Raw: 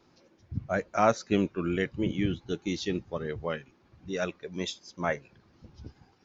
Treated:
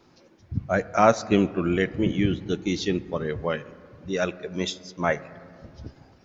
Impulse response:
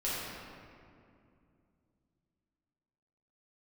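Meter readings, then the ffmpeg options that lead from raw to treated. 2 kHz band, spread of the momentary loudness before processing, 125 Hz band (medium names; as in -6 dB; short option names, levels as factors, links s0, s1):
+5.5 dB, 14 LU, +5.5 dB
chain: -filter_complex "[0:a]asplit=2[s0][s1];[1:a]atrim=start_sample=2205,lowpass=2700[s2];[s1][s2]afir=irnorm=-1:irlink=0,volume=0.0794[s3];[s0][s3]amix=inputs=2:normalize=0,volume=1.78"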